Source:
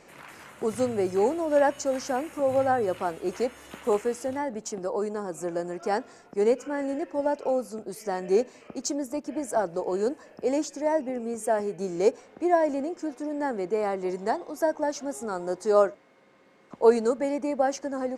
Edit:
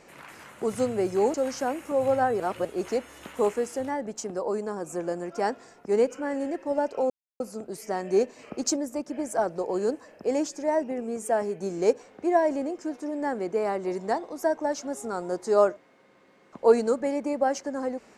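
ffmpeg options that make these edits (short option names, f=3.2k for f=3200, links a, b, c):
-filter_complex "[0:a]asplit=7[a][b][c][d][e][f][g];[a]atrim=end=1.342[h];[b]atrim=start=1.818:end=2.882[i];[c]atrim=start=2.878:end=3.132,asetpts=PTS-STARTPTS,areverse[j];[d]atrim=start=3.128:end=7.58,asetpts=PTS-STARTPTS,afade=t=out:st=4.448:d=0.004:c=hsin,apad=pad_dur=0.3[k];[e]atrim=start=7.58:end=8.572,asetpts=PTS-STARTPTS,afade=t=in:d=0.004:c=hsin[l];[f]atrim=start=8.568:end=8.942,asetpts=PTS-STARTPTS,volume=4dB[m];[g]atrim=start=8.938[n];[h][i]acrossfade=d=0.004:c1=hsin:c2=hsin[o];[o][j]acrossfade=d=0.004:c1=hsin:c2=hsin[p];[k][l]concat=n=2:v=0:a=1[q];[p][q]acrossfade=d=0.004:c1=hsin:c2=hsin[r];[r][m]acrossfade=d=0.004:c1=hsin:c2=hsin[s];[s][n]acrossfade=d=0.004:c1=hsin:c2=hsin"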